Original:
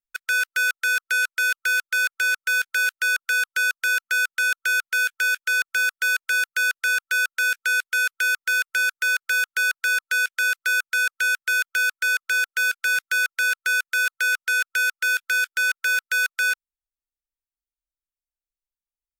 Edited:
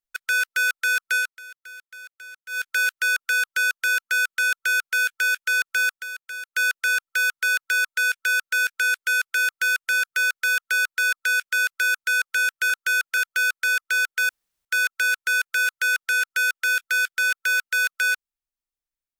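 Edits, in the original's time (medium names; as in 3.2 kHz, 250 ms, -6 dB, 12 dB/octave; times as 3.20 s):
1.16–2.70 s: dip -19.5 dB, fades 0.23 s
4.49–4.96 s: copy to 11.56 s
5.91–6.58 s: dip -12 dB, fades 0.13 s
9.23–10.37 s: copy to 7.09 s
12.68–13.04 s: room tone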